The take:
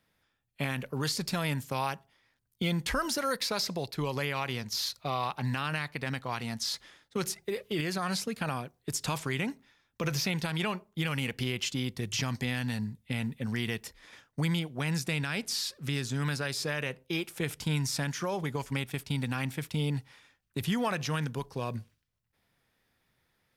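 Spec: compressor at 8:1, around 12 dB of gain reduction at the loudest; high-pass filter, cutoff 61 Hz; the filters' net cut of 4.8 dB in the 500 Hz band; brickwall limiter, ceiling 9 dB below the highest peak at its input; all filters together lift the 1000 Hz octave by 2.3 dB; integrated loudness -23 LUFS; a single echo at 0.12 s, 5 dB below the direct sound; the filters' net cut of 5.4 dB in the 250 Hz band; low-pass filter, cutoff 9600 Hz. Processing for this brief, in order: HPF 61 Hz; LPF 9600 Hz; bell 250 Hz -7.5 dB; bell 500 Hz -5 dB; bell 1000 Hz +4.5 dB; compressor 8:1, threshold -38 dBFS; limiter -33 dBFS; echo 0.12 s -5 dB; gain +20.5 dB

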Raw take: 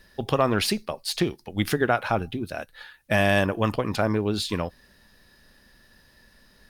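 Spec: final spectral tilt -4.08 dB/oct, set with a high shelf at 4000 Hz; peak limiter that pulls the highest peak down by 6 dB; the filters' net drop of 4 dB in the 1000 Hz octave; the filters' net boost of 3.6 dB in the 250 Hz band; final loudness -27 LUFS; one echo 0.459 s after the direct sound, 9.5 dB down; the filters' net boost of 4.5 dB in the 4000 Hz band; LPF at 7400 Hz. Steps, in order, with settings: LPF 7400 Hz; bell 250 Hz +5 dB; bell 1000 Hz -6.5 dB; high shelf 4000 Hz -4 dB; bell 4000 Hz +8.5 dB; limiter -12 dBFS; echo 0.459 s -9.5 dB; gain -2 dB

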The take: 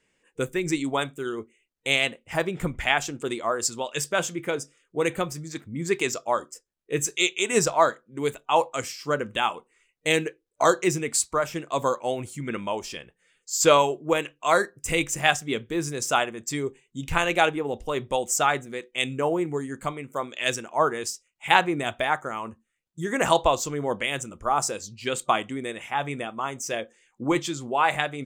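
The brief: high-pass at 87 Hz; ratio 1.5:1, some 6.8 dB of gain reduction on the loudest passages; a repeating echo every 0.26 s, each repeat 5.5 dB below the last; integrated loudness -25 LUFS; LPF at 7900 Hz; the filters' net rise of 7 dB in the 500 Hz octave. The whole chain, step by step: HPF 87 Hz; LPF 7900 Hz; bell 500 Hz +8.5 dB; compressor 1.5:1, threshold -25 dBFS; feedback echo 0.26 s, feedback 53%, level -5.5 dB; gain -0.5 dB

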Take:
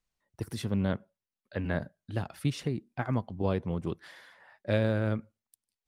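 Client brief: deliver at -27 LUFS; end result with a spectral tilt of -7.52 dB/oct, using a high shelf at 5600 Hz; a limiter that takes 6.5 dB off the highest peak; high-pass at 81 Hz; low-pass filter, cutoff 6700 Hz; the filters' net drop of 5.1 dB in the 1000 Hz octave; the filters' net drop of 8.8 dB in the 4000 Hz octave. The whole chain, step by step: HPF 81 Hz; LPF 6700 Hz; bell 1000 Hz -6.5 dB; bell 4000 Hz -7.5 dB; high shelf 5600 Hz -8 dB; gain +9 dB; limiter -14.5 dBFS

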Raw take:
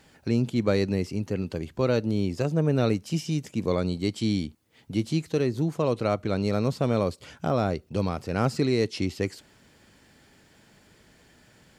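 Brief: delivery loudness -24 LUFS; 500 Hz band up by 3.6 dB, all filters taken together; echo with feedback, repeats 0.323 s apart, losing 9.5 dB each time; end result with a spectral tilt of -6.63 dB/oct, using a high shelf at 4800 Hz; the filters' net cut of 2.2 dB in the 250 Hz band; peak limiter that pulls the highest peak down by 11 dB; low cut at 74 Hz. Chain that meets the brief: HPF 74 Hz; bell 250 Hz -4.5 dB; bell 500 Hz +5.5 dB; high shelf 4800 Hz -4.5 dB; limiter -19.5 dBFS; feedback echo 0.323 s, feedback 33%, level -9.5 dB; gain +6.5 dB

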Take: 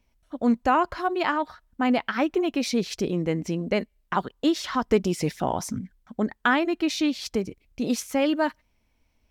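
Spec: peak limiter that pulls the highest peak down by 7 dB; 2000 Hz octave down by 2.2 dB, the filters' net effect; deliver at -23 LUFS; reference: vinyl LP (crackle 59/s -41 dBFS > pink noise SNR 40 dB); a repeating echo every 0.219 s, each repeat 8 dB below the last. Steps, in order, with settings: bell 2000 Hz -3 dB; limiter -15.5 dBFS; feedback echo 0.219 s, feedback 40%, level -8 dB; crackle 59/s -41 dBFS; pink noise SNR 40 dB; gain +4 dB

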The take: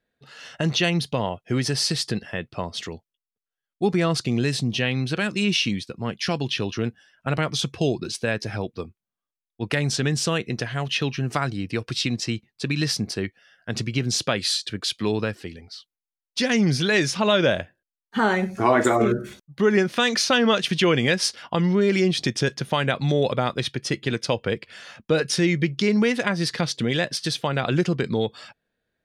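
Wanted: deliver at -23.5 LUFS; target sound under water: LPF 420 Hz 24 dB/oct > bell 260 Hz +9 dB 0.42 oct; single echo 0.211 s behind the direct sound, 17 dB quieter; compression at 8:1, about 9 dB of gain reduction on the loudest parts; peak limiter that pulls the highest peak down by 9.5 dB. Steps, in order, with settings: compressor 8:1, threshold -24 dBFS; limiter -20 dBFS; LPF 420 Hz 24 dB/oct; bell 260 Hz +9 dB 0.42 oct; echo 0.211 s -17 dB; gain +8 dB

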